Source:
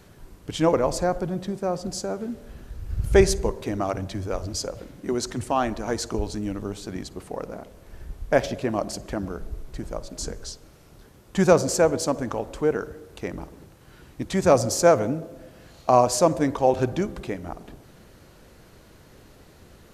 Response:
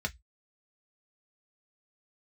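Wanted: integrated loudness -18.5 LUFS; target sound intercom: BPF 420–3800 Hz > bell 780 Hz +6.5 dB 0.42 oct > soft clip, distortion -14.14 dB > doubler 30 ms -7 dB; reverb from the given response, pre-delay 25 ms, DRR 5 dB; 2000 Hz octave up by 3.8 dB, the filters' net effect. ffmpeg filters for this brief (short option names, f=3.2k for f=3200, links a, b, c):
-filter_complex "[0:a]equalizer=f=2k:t=o:g=5,asplit=2[a][b];[1:a]atrim=start_sample=2205,adelay=25[c];[b][c]afir=irnorm=-1:irlink=0,volume=-9.5dB[d];[a][d]amix=inputs=2:normalize=0,highpass=420,lowpass=3.8k,equalizer=f=780:t=o:w=0.42:g=6.5,asoftclip=threshold=-9.5dB,asplit=2[e][f];[f]adelay=30,volume=-7dB[g];[e][g]amix=inputs=2:normalize=0,volume=6dB"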